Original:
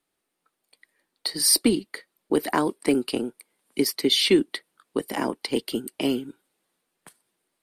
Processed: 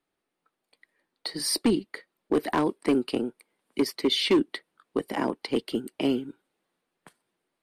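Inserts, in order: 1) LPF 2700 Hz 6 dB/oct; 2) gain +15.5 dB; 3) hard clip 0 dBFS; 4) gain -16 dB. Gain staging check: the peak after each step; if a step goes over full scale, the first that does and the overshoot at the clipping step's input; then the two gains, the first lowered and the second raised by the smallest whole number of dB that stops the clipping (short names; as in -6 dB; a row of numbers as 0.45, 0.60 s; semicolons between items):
-8.0, +7.5, 0.0, -16.0 dBFS; step 2, 7.5 dB; step 2 +7.5 dB, step 4 -8 dB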